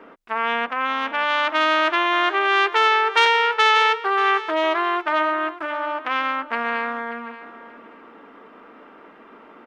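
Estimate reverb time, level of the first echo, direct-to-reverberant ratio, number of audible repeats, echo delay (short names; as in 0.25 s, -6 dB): none, -15.0 dB, none, 2, 0.583 s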